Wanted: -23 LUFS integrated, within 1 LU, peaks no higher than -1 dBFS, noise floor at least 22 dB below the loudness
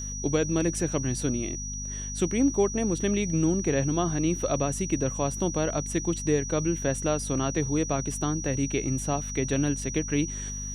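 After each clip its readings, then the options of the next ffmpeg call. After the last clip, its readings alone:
hum 50 Hz; harmonics up to 250 Hz; hum level -34 dBFS; steady tone 5800 Hz; tone level -35 dBFS; loudness -27.5 LUFS; peak -12.5 dBFS; loudness target -23.0 LUFS
-> -af "bandreject=f=50:t=h:w=6,bandreject=f=100:t=h:w=6,bandreject=f=150:t=h:w=6,bandreject=f=200:t=h:w=6,bandreject=f=250:t=h:w=6"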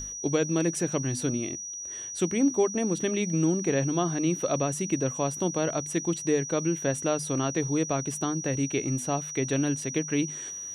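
hum none; steady tone 5800 Hz; tone level -35 dBFS
-> -af "bandreject=f=5.8k:w=30"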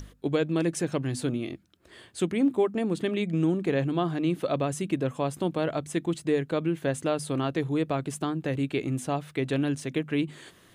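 steady tone none; loudness -28.5 LUFS; peak -13.5 dBFS; loudness target -23.0 LUFS
-> -af "volume=5.5dB"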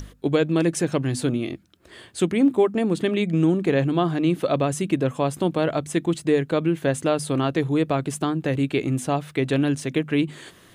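loudness -23.0 LUFS; peak -8.0 dBFS; noise floor -52 dBFS

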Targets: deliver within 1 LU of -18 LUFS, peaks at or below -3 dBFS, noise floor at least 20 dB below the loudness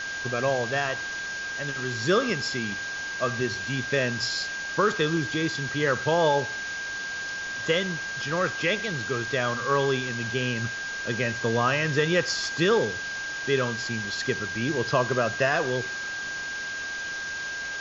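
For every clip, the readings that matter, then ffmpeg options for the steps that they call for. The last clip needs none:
steady tone 1600 Hz; tone level -31 dBFS; noise floor -33 dBFS; noise floor target -47 dBFS; loudness -26.5 LUFS; peak -10.0 dBFS; loudness target -18.0 LUFS
-> -af "bandreject=f=1.6k:w=30"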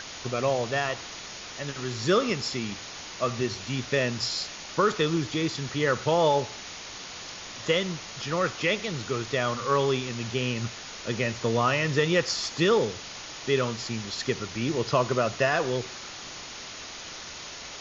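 steady tone none; noise floor -41 dBFS; noise floor target -48 dBFS
-> -af "afftdn=nr=7:nf=-41"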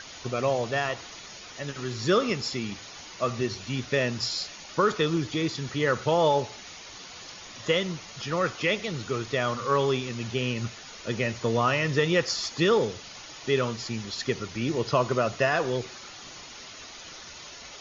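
noise floor -44 dBFS; noise floor target -48 dBFS
-> -af "afftdn=nr=6:nf=-44"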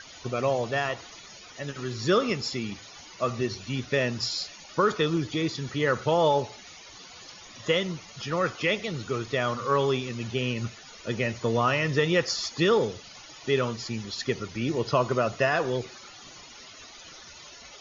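noise floor -47 dBFS; noise floor target -48 dBFS
-> -af "afftdn=nr=6:nf=-47"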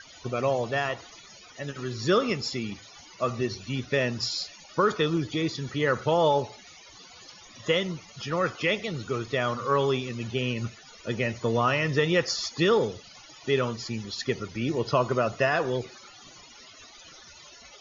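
noise floor -50 dBFS; loudness -27.5 LUFS; peak -11.0 dBFS; loudness target -18.0 LUFS
-> -af "volume=9.5dB,alimiter=limit=-3dB:level=0:latency=1"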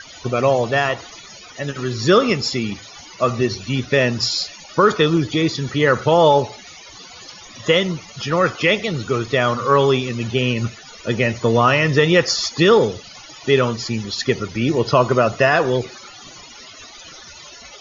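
loudness -18.0 LUFS; peak -3.0 dBFS; noise floor -41 dBFS

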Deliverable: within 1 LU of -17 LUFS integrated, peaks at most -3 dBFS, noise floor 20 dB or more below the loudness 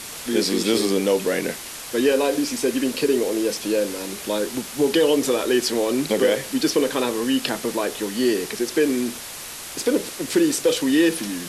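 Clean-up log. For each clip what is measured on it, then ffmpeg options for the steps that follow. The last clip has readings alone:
noise floor -35 dBFS; noise floor target -42 dBFS; loudness -22.0 LUFS; peak -6.0 dBFS; loudness target -17.0 LUFS
-> -af "afftdn=nr=7:nf=-35"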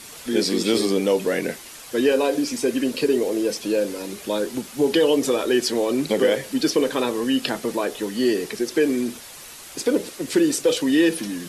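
noise floor -41 dBFS; noise floor target -42 dBFS
-> -af "afftdn=nr=6:nf=-41"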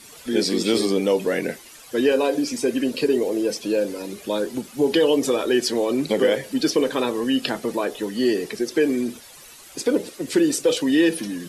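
noise floor -45 dBFS; loudness -22.0 LUFS; peak -7.0 dBFS; loudness target -17.0 LUFS
-> -af "volume=5dB,alimiter=limit=-3dB:level=0:latency=1"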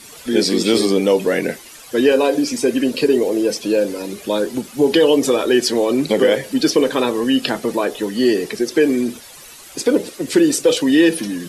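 loudness -17.0 LUFS; peak -3.0 dBFS; noise floor -40 dBFS

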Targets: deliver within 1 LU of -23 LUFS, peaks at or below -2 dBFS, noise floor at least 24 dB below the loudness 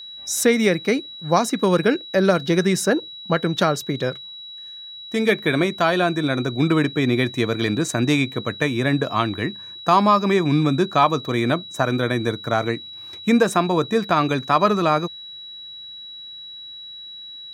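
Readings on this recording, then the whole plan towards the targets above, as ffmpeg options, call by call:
steady tone 3900 Hz; tone level -35 dBFS; loudness -20.5 LUFS; peak -3.0 dBFS; loudness target -23.0 LUFS
-> -af "bandreject=f=3.9k:w=30"
-af "volume=-2.5dB"

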